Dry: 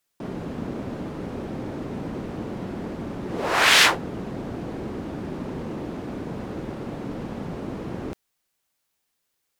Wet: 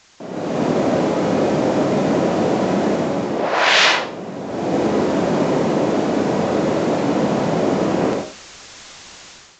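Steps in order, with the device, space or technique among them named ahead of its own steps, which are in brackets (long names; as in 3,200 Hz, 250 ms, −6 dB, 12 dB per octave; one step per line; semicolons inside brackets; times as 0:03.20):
filmed off a television (band-pass filter 180–6,200 Hz; parametric band 650 Hz +7 dB 0.44 octaves; convolution reverb RT60 0.40 s, pre-delay 50 ms, DRR 0.5 dB; white noise bed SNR 22 dB; automatic gain control gain up to 14 dB; level −1 dB; AAC 64 kbit/s 16,000 Hz)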